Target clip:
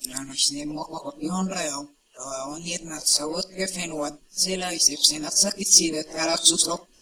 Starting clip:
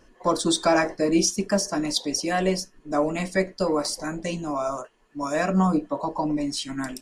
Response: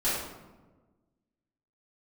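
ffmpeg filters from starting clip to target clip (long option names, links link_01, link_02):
-filter_complex "[0:a]areverse,asplit=2[link_01][link_02];[1:a]atrim=start_sample=2205,atrim=end_sample=4410[link_03];[link_02][link_03]afir=irnorm=-1:irlink=0,volume=-26.5dB[link_04];[link_01][link_04]amix=inputs=2:normalize=0,aexciter=amount=4.9:drive=6.2:freq=2600,volume=-6.5dB"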